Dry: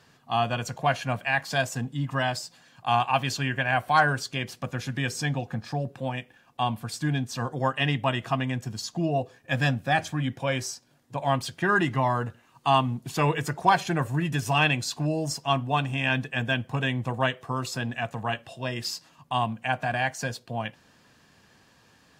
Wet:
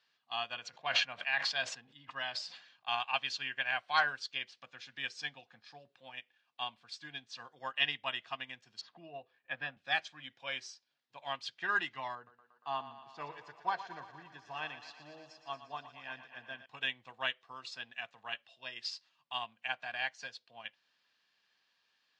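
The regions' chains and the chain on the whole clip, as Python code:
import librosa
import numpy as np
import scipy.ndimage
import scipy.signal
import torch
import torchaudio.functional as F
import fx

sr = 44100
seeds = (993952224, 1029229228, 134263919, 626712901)

y = fx.chain(x, sr, fx.lowpass(hz=4000.0, slope=6),
    fx.sustainer(db_per_s=53.0), at=(0.54, 2.88))
y = fx.chain(y, sr, fx.lowpass(hz=1900.0, slope=12),
    fx.band_squash(depth_pct=40), at=(8.81, 9.77))
y = fx.chain(y, sr, fx.lowpass(hz=4200.0, slope=12),
    fx.peak_eq(hz=2800.0, db=-14.5, octaves=1.3),
    fx.echo_thinned(ms=117, feedback_pct=78, hz=230.0, wet_db=-9.0), at=(12.15, 16.66))
y = scipy.signal.sosfilt(scipy.signal.butter(4, 4200.0, 'lowpass', fs=sr, output='sos'), y)
y = np.diff(y, prepend=0.0)
y = fx.upward_expand(y, sr, threshold_db=-56.0, expansion=1.5)
y = y * 10.0 ** (8.0 / 20.0)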